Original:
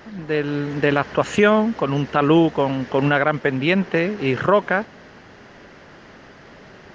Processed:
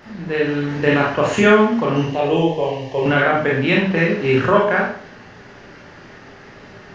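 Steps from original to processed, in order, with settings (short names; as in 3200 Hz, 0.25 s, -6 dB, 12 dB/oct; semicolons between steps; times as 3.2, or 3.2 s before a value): 2.04–3.06 fixed phaser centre 570 Hz, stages 4; reverb RT60 0.50 s, pre-delay 26 ms, DRR -4 dB; gain -2 dB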